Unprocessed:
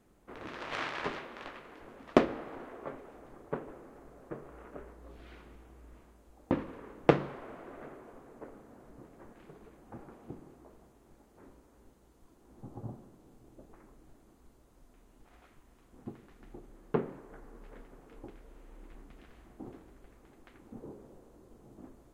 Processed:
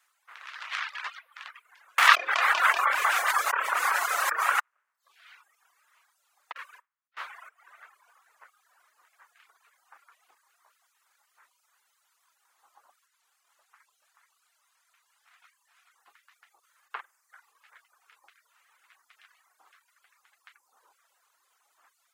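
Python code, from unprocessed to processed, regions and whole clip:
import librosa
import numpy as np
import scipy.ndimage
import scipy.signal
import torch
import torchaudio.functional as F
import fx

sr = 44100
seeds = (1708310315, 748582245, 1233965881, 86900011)

y = fx.chain(x, sr, fx.doubler(ms=28.0, db=-7.0),
    fx.echo_feedback(ms=191, feedback_pct=45, wet_db=-12.0),
    fx.env_flatten(amount_pct=100), at=(1.98, 4.6))
y = fx.chain(y, sr, fx.over_compress(threshold_db=-36.0, ratio=-0.5),
    fx.gate_hold(open_db=-31.0, close_db=-33.0, hold_ms=71.0, range_db=-21, attack_ms=1.4, release_ms=100.0), at=(6.52, 7.49))
y = fx.chain(y, sr, fx.low_shelf(hz=260.0, db=-10.0),
    fx.echo_single(ms=431, db=-5.0),
    fx.doppler_dist(depth_ms=0.22), at=(13.06, 16.0))
y = fx.chain(y, sr, fx.gate_hold(open_db=-47.0, close_db=-51.0, hold_ms=71.0, range_db=-21, attack_ms=1.4, release_ms=100.0),
    fx.room_flutter(wall_m=8.6, rt60_s=0.5), at=(16.58, 17.53))
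y = fx.dereverb_blind(y, sr, rt60_s=0.71)
y = scipy.signal.sosfilt(scipy.signal.butter(4, 1200.0, 'highpass', fs=sr, output='sos'), y)
y = fx.dereverb_blind(y, sr, rt60_s=0.71)
y = y * 10.0 ** (7.5 / 20.0)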